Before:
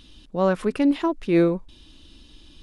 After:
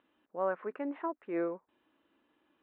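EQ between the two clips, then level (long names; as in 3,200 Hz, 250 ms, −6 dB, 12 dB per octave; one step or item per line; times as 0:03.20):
high-pass filter 520 Hz 12 dB per octave
low-pass filter 1,900 Hz 24 dB per octave
high-frequency loss of the air 170 metres
−7.5 dB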